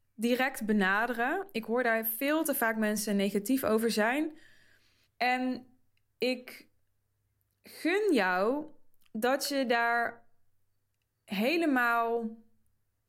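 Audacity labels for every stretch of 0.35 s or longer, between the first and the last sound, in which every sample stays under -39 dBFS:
4.290000	5.210000	silence
5.580000	6.210000	silence
6.550000	7.730000	silence
8.650000	9.150000	silence
10.130000	11.310000	silence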